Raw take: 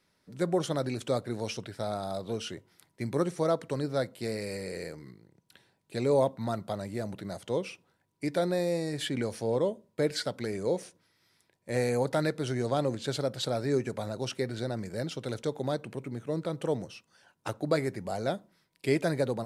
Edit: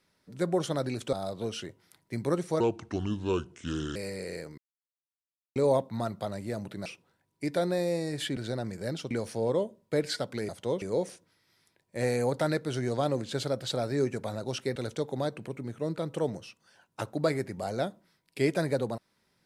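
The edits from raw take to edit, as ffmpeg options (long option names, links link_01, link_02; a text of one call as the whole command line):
ffmpeg -i in.wav -filter_complex "[0:a]asplit=12[link_01][link_02][link_03][link_04][link_05][link_06][link_07][link_08][link_09][link_10][link_11][link_12];[link_01]atrim=end=1.132[link_13];[link_02]atrim=start=2.008:end=3.484[link_14];[link_03]atrim=start=3.48:end=4.43,asetpts=PTS-STARTPTS,asetrate=30870,aresample=44100,atrim=end_sample=59850,asetpts=PTS-STARTPTS[link_15];[link_04]atrim=start=4.426:end=5.05,asetpts=PTS-STARTPTS,afade=type=out:start_time=0.62:duration=0.004:curve=hsin[link_16];[link_05]atrim=start=5.05:end=6.03,asetpts=PTS-STARTPTS,volume=0[link_17];[link_06]atrim=start=6.03:end=7.332,asetpts=PTS-STARTPTS,afade=type=in:duration=0.004:curve=hsin[link_18];[link_07]atrim=start=7.658:end=9.172[link_19];[link_08]atrim=start=14.488:end=15.232[link_20];[link_09]atrim=start=9.168:end=10.552[link_21];[link_10]atrim=start=7.328:end=7.662[link_22];[link_11]atrim=start=10.548:end=14.492[link_23];[link_12]atrim=start=15.228[link_24];[link_13][link_14]acrossfade=duration=0.004:curve1=hsin:curve2=hsin[link_25];[link_25][link_15]acrossfade=duration=0.004:curve1=hsin:curve2=hsin[link_26];[link_16][link_17][link_18]concat=n=3:v=0:a=1[link_27];[link_26][link_27]acrossfade=duration=0.004:curve1=hsin:curve2=hsin[link_28];[link_28][link_19]acrossfade=duration=0.004:curve1=hsin:curve2=hsin[link_29];[link_29][link_20]acrossfade=duration=0.004:curve1=hsin:curve2=hsin[link_30];[link_30][link_21]acrossfade=duration=0.004:curve1=hsin:curve2=hsin[link_31];[link_31][link_22]acrossfade=duration=0.004:curve1=hsin:curve2=hsin[link_32];[link_32][link_23]acrossfade=duration=0.004:curve1=hsin:curve2=hsin[link_33];[link_33][link_24]acrossfade=duration=0.004:curve1=hsin:curve2=hsin" out.wav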